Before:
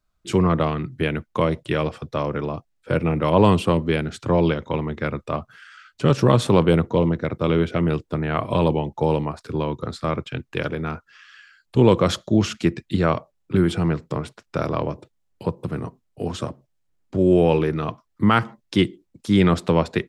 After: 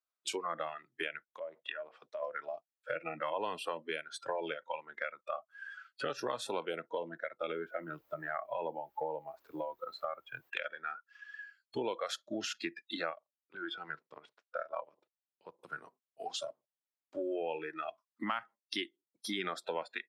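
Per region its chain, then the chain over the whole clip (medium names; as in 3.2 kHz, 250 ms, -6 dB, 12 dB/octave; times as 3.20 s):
1.30–2.23 s: low-pass that closes with the level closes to 1.5 kHz, closed at -18.5 dBFS + bass shelf 140 Hz -11.5 dB + compression, threshold -27 dBFS
7.51–10.49 s: treble shelf 2.3 kHz -11 dB + added noise brown -44 dBFS
13.10–15.59 s: low-pass 4.4 kHz + level held to a coarse grid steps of 12 dB
whole clip: spectral noise reduction 20 dB; high-pass 580 Hz 12 dB/octave; compression 4:1, threshold -41 dBFS; trim +4 dB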